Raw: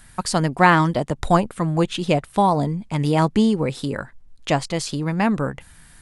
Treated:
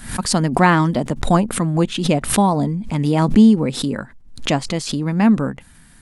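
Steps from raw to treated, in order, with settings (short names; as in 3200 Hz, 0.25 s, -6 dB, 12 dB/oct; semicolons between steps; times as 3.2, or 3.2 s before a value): bell 230 Hz +9 dB 0.79 oct; backwards sustainer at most 100 dB/s; gain -1 dB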